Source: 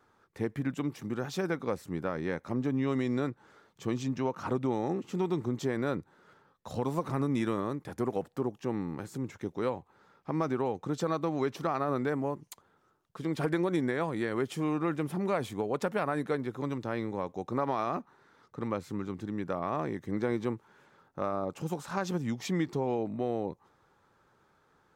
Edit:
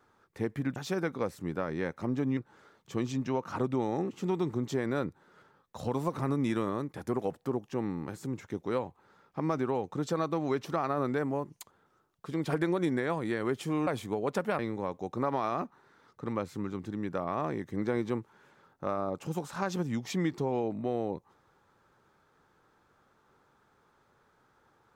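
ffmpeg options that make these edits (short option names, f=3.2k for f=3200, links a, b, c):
-filter_complex "[0:a]asplit=5[a][b][c][d][e];[a]atrim=end=0.762[f];[b]atrim=start=1.228:end=2.842[g];[c]atrim=start=3.278:end=14.782[h];[d]atrim=start=15.338:end=16.062[i];[e]atrim=start=16.938[j];[f][g]acrossfade=d=0.004:c1=hsin:c2=hsin[k];[k][h]acrossfade=d=0.004:c1=hsin:c2=hsin[l];[l][i]acrossfade=d=0.004:c1=hsin:c2=hsin[m];[m][j]acrossfade=d=0.004:c1=hsin:c2=hsin"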